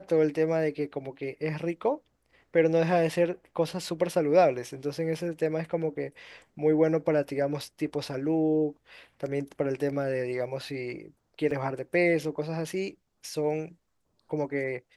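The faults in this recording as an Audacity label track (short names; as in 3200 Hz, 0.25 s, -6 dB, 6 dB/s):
11.510000	11.510000	gap 3.4 ms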